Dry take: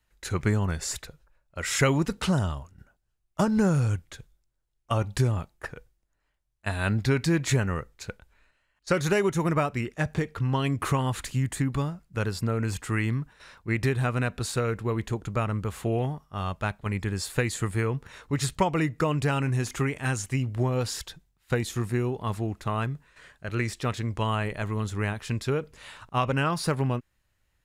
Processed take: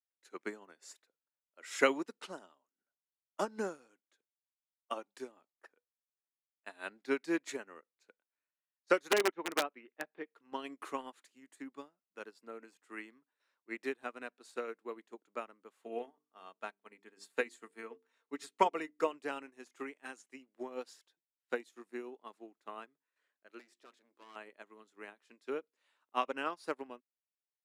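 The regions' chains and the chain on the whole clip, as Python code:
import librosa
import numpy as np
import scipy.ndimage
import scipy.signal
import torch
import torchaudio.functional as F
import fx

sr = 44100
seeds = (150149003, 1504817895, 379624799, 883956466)

y = fx.chain(x, sr, fx.lowpass(hz=3400.0, slope=24),
    fx.low_shelf(hz=74.0, db=-10.0),
    fx.overflow_wrap(gain_db=15.5), at=(9.11, 10.31))
y = fx.chain(y, sr, fx.hum_notches(base_hz=50, count=9),
    fx.comb(ms=4.4, depth=0.33), at=(15.79, 19.13))
y = fx.chain(y, sr, fx.overload_stage(gain_db=29.0),
    fx.hum_notches(base_hz=50, count=7), at=(23.59, 24.36))
y = scipy.signal.sosfilt(scipy.signal.butter(6, 260.0, 'highpass', fs=sr, output='sos'), y)
y = fx.high_shelf(y, sr, hz=12000.0, db=-7.5)
y = fx.upward_expand(y, sr, threshold_db=-40.0, expansion=2.5)
y = y * 10.0 ** (-1.0 / 20.0)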